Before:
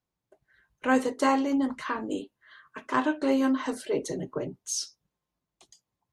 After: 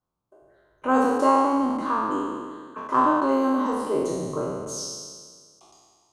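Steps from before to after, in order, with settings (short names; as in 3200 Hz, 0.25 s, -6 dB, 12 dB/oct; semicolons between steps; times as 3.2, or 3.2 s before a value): spectral trails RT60 1.77 s; resonant high shelf 1500 Hz -6.5 dB, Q 3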